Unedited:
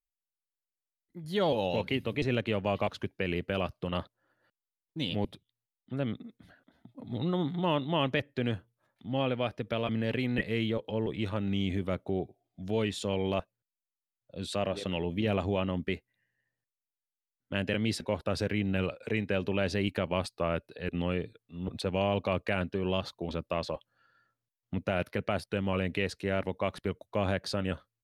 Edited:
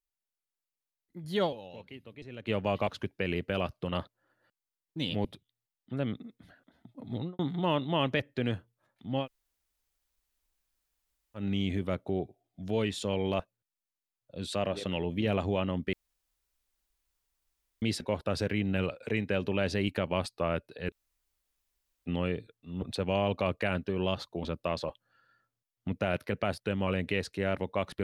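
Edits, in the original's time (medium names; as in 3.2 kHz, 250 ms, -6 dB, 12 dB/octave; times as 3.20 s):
1.45–2.50 s: dip -16.5 dB, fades 0.47 s exponential
7.14–7.39 s: studio fade out
9.23–11.39 s: room tone, crossfade 0.10 s
15.93–17.82 s: room tone
20.92 s: insert room tone 1.14 s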